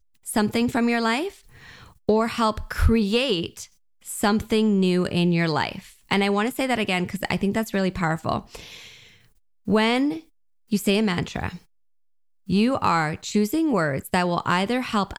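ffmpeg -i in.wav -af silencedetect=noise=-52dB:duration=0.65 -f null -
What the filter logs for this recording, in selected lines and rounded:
silence_start: 11.65
silence_end: 12.47 | silence_duration: 0.82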